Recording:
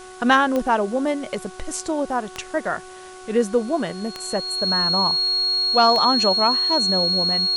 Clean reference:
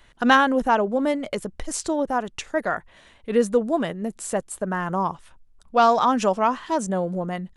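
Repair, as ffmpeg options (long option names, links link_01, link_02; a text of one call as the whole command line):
ffmpeg -i in.wav -af "adeclick=threshold=4,bandreject=frequency=370.5:width_type=h:width=4,bandreject=frequency=741:width_type=h:width=4,bandreject=frequency=1111.5:width_type=h:width=4,bandreject=frequency=1482:width_type=h:width=4,bandreject=frequency=4300:width=30,afwtdn=0.0056" out.wav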